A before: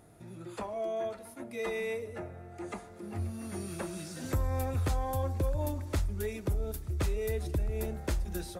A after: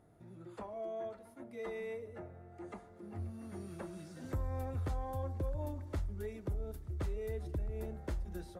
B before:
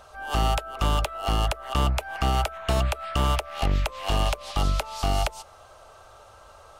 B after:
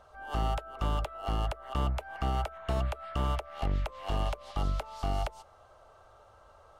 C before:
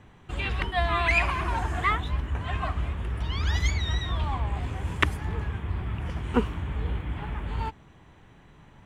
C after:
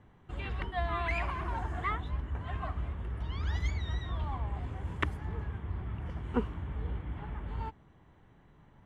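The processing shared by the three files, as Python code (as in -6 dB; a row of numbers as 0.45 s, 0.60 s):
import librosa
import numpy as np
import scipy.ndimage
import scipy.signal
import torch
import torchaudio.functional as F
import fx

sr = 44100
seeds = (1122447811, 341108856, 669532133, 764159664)

y = fx.high_shelf(x, sr, hz=2700.0, db=-10.5)
y = fx.notch(y, sr, hz=2500.0, q=16.0)
y = y * 10.0 ** (-6.5 / 20.0)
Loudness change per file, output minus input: -7.0 LU, -7.5 LU, -8.0 LU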